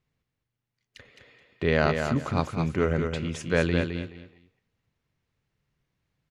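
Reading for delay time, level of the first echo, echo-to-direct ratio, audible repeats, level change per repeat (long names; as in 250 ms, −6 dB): 213 ms, −6.0 dB, −6.0 dB, 3, −13.0 dB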